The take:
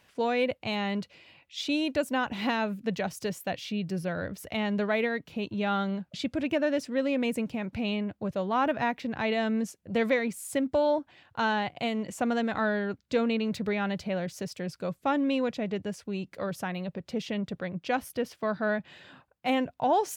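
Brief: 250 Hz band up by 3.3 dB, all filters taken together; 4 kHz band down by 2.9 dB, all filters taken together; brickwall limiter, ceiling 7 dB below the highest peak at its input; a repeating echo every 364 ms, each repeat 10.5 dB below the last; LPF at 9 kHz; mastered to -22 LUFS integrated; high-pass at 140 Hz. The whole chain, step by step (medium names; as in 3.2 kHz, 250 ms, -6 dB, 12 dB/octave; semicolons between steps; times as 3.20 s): high-pass 140 Hz; low-pass 9 kHz; peaking EQ 250 Hz +4.5 dB; peaking EQ 4 kHz -4 dB; peak limiter -20 dBFS; feedback delay 364 ms, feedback 30%, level -10.5 dB; trim +7.5 dB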